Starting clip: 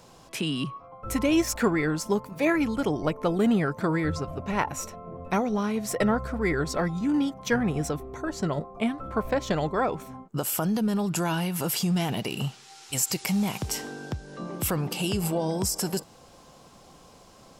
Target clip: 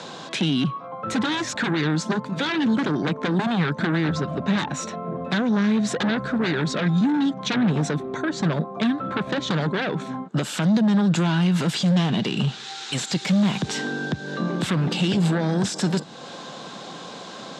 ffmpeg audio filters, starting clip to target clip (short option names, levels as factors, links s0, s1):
-filter_complex "[0:a]aeval=exprs='0.299*sin(PI/2*4.47*val(0)/0.299)':c=same,highpass=f=160:w=0.5412,highpass=f=160:w=1.3066,equalizer=f=1600:t=q:w=4:g=7,equalizer=f=3700:t=q:w=4:g=10,equalizer=f=5400:t=q:w=4:g=-4,lowpass=f=7000:w=0.5412,lowpass=f=7000:w=1.3066,acrossover=split=230[s0][s1];[s1]acompressor=threshold=0.02:ratio=2[s2];[s0][s2]amix=inputs=2:normalize=0,volume=0.891"